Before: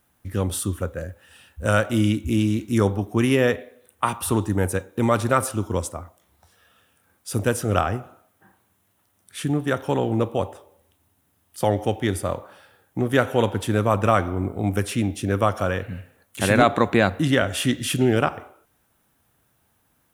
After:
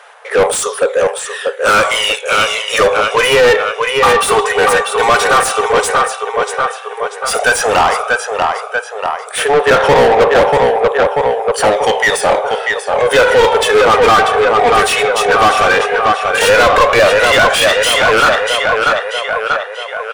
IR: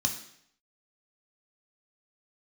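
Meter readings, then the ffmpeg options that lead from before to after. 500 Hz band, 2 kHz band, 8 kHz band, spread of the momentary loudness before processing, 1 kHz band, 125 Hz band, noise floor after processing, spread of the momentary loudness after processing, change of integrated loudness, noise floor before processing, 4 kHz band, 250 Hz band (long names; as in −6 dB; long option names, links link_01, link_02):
+14.0 dB, +17.5 dB, +13.0 dB, 11 LU, +16.0 dB, −5.0 dB, −27 dBFS, 8 LU, +11.5 dB, −67 dBFS, +18.0 dB, −3.0 dB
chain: -filter_complex "[0:a]afftfilt=real='re*between(b*sr/4096,400,11000)':imag='im*between(b*sr/4096,400,11000)':win_size=4096:overlap=0.75,aphaser=in_gain=1:out_gain=1:delay=2.7:decay=0.64:speed=0.1:type=sinusoidal,asplit=2[link_01][link_02];[link_02]adelay=638,lowpass=frequency=4800:poles=1,volume=-9dB,asplit=2[link_03][link_04];[link_04]adelay=638,lowpass=frequency=4800:poles=1,volume=0.52,asplit=2[link_05][link_06];[link_06]adelay=638,lowpass=frequency=4800:poles=1,volume=0.52,asplit=2[link_07][link_08];[link_08]adelay=638,lowpass=frequency=4800:poles=1,volume=0.52,asplit=2[link_09][link_10];[link_10]adelay=638,lowpass=frequency=4800:poles=1,volume=0.52,asplit=2[link_11][link_12];[link_12]adelay=638,lowpass=frequency=4800:poles=1,volume=0.52[link_13];[link_01][link_03][link_05][link_07][link_09][link_11][link_13]amix=inputs=7:normalize=0,asplit=2[link_14][link_15];[link_15]highpass=frequency=720:poles=1,volume=32dB,asoftclip=type=tanh:threshold=-1dB[link_16];[link_14][link_16]amix=inputs=2:normalize=0,lowpass=frequency=3000:poles=1,volume=-6dB"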